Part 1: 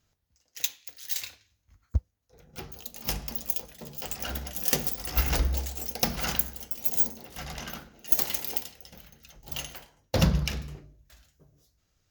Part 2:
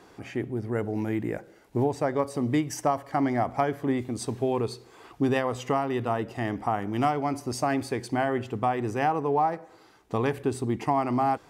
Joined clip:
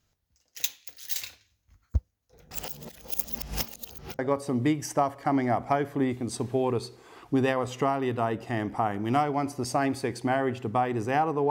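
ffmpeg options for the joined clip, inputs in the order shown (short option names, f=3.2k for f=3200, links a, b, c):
-filter_complex "[0:a]apad=whole_dur=11.5,atrim=end=11.5,asplit=2[a][b];[a]atrim=end=2.512[c];[b]atrim=start=2.508:end=4.192,asetpts=PTS-STARTPTS,areverse[d];[1:a]atrim=start=2.068:end=9.38[e];[c][d]acrossfade=d=0.004:c1=hsin:c2=hsin[f];[f][e]acrossfade=d=0.004:c1=hsin:c2=hsin"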